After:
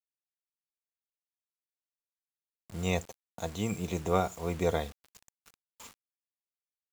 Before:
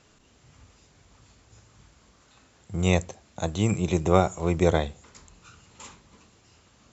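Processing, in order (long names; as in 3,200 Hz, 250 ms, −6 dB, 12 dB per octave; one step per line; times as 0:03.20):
parametric band 190 Hz −2.5 dB 1.2 octaves
comb filter 4.3 ms, depth 38%
bit reduction 7 bits
level −7 dB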